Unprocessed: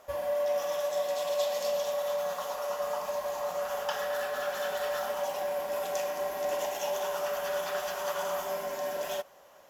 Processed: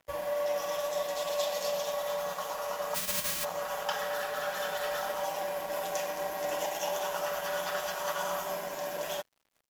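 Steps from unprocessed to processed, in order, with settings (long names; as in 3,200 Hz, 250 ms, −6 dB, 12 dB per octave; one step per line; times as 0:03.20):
0:02.94–0:03.43: spectral envelope flattened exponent 0.1
comb filter 6.2 ms, depth 45%
dead-zone distortion −50 dBFS
level +1.5 dB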